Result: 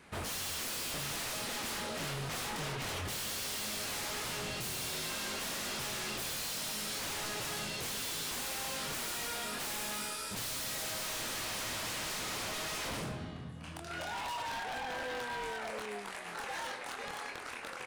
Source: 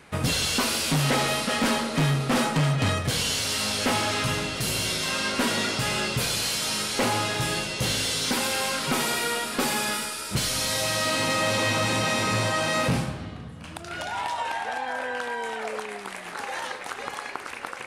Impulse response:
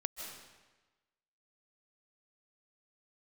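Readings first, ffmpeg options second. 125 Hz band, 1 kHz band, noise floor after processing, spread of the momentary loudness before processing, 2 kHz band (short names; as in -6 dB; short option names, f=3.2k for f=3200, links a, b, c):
-17.5 dB, -12.0 dB, -45 dBFS, 11 LU, -11.5 dB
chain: -filter_complex "[0:a]asplit=2[a][b];[b]adelay=24,volume=-4dB[c];[a][c]amix=inputs=2:normalize=0,aeval=exprs='0.0501*(abs(mod(val(0)/0.0501+3,4)-2)-1)':c=same,volume=-7.5dB"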